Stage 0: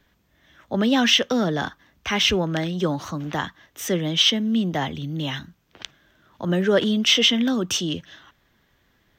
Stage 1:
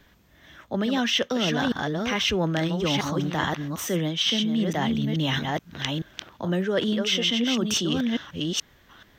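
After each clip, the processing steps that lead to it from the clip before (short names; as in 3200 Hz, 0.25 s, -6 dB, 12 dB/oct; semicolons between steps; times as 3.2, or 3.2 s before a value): reverse delay 0.43 s, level -7 dB; reverse; compressor 6:1, threshold -28 dBFS, peak gain reduction 14.5 dB; reverse; gain +6 dB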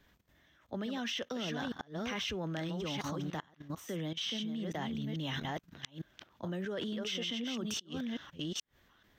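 level quantiser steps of 15 dB; flipped gate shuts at -18 dBFS, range -27 dB; gain -7 dB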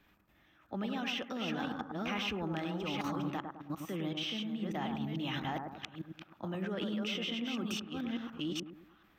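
thirty-one-band EQ 200 Hz +5 dB, 315 Hz +7 dB, 800 Hz +7 dB, 1250 Hz +8 dB, 2500 Hz +10 dB, 6300 Hz -4 dB, 12500 Hz +6 dB; analogue delay 0.104 s, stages 1024, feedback 42%, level -5 dB; gain -3.5 dB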